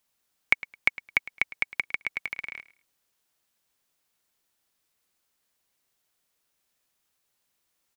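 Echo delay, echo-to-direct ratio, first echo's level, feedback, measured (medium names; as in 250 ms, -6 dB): 107 ms, -18.5 dB, -18.5 dB, 22%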